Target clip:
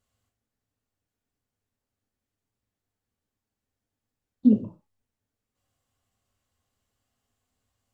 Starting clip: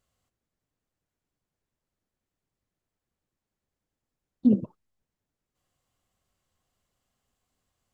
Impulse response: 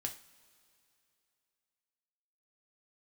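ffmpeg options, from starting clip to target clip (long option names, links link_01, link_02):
-filter_complex "[1:a]atrim=start_sample=2205,atrim=end_sample=6615,asetrate=41454,aresample=44100[link_01];[0:a][link_01]afir=irnorm=-1:irlink=0"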